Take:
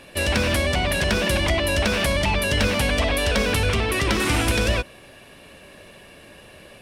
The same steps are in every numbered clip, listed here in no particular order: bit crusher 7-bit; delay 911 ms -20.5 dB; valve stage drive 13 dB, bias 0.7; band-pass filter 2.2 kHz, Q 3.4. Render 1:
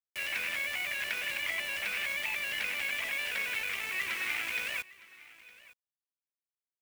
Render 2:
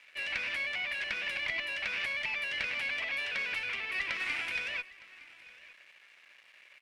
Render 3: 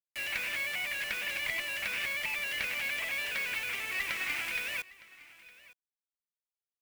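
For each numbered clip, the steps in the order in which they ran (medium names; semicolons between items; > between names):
valve stage > band-pass filter > bit crusher > delay; bit crusher > band-pass filter > valve stage > delay; band-pass filter > valve stage > bit crusher > delay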